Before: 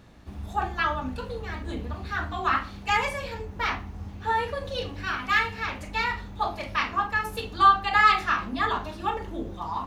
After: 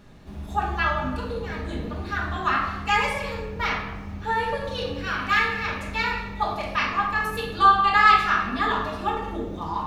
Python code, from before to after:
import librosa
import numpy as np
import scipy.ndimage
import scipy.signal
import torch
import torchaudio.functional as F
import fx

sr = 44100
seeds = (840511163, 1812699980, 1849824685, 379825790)

y = fx.room_shoebox(x, sr, seeds[0], volume_m3=620.0, walls='mixed', distance_m=1.3)